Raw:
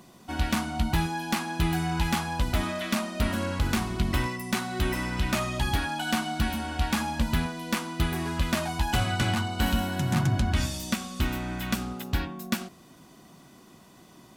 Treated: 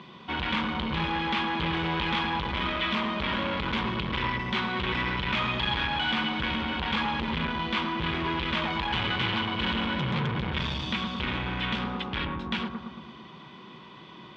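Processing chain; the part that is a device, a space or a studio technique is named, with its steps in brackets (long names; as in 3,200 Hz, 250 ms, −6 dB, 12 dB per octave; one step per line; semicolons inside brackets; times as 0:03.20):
analogue delay pedal into a guitar amplifier (bucket-brigade delay 112 ms, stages 1,024, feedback 61%, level −8 dB; tube saturation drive 32 dB, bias 0.4; loudspeaker in its box 81–3,700 Hz, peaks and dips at 97 Hz −9 dB, 280 Hz −7 dB, 690 Hz −10 dB, 1,000 Hz +6 dB, 2,300 Hz +5 dB, 3,300 Hz +9 dB)
level +7.5 dB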